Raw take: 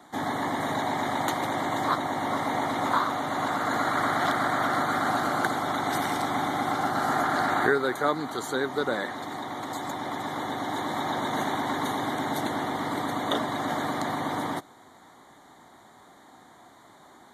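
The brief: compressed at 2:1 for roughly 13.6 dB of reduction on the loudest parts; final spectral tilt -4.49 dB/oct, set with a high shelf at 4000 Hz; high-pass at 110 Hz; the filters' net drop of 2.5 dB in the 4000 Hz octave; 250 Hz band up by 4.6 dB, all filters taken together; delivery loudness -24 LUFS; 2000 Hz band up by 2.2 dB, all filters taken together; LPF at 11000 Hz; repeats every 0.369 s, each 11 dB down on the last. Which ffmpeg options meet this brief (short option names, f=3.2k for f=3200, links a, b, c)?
-af "highpass=110,lowpass=11k,equalizer=f=250:t=o:g=5.5,equalizer=f=2k:t=o:g=3,highshelf=f=4k:g=4.5,equalizer=f=4k:t=o:g=-6,acompressor=threshold=-41dB:ratio=2,aecho=1:1:369|738|1107:0.282|0.0789|0.0221,volume=11.5dB"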